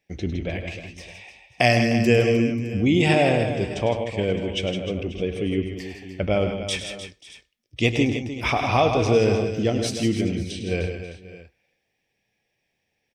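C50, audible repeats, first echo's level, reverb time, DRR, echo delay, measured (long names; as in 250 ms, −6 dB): no reverb audible, 5, −10.5 dB, no reverb audible, no reverb audible, 103 ms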